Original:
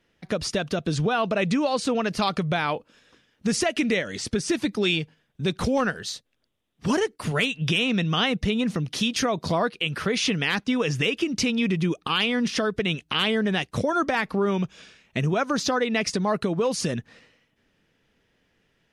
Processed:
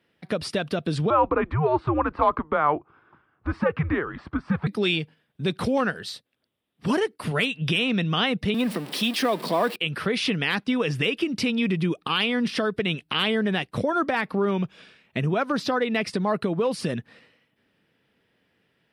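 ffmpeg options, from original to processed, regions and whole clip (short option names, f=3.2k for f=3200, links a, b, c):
-filter_complex "[0:a]asettb=1/sr,asplit=3[a][b][c];[a]atrim=end=1.104[d];[b]atrim=start=1.1:end=4.67,asetpts=PTS-STARTPTS,afade=t=in:d=0.004:c=qsin,afade=t=out:st=3.566:d=0.004:c=qsin,lowpass=f=1.3k:t=q:w=2.7,afreqshift=-150[e];[c]atrim=start=4.666[f];[d][e]acrossfade=d=0.004:c1=hsin:c2=qsin[g];[g][f]acrossfade=d=0.004:c1=qsin:c2=hsin,asettb=1/sr,asplit=3[h][i][j];[h]atrim=end=8.544[k];[i]atrim=start=8.54:end=9.76,asetpts=PTS-STARTPTS,afade=t=in:d=0.004:c=qsin,afade=t=out:st=1.216:d=0.004:c=qsin,aeval=exprs='val(0)+0.5*0.0335*sgn(val(0))':c=same,highpass=f=210:w=0.5412,highpass=f=210:w=1.3066,bandreject=f=1.4k:w=12[l];[j]atrim=start=9.756[m];[k][l]acrossfade=d=0.004:c1=hsin:c2=qsin[n];[n][m]acrossfade=d=0.004:c1=qsin:c2=hsin,asettb=1/sr,asplit=3[o][p][q];[o]atrim=end=13.564[r];[p]atrim=start=13.56:end=16.9,asetpts=PTS-STARTPTS,afade=t=in:d=0.004:c=qsin,afade=t=out:st=3.336:d=0.004:c=qsin,equalizer=f=8.6k:t=o:w=2.2:g=-3,asoftclip=type=hard:threshold=-14.5dB[s];[q]atrim=start=16.896[t];[r][s]acrossfade=d=0.004:c1=hsin:c2=qsin[u];[u][t]acrossfade=d=0.004:c1=qsin:c2=hsin,highpass=98,equalizer=f=6.5k:t=o:w=0.39:g=-13.5"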